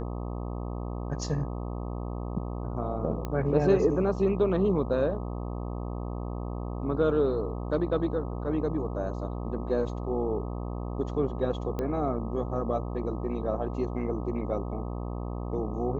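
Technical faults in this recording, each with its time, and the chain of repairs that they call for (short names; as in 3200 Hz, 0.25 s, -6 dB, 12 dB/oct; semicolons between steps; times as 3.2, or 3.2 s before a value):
buzz 60 Hz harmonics 21 -34 dBFS
3.25 pop -20 dBFS
11.79 pop -20 dBFS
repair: de-click; de-hum 60 Hz, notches 21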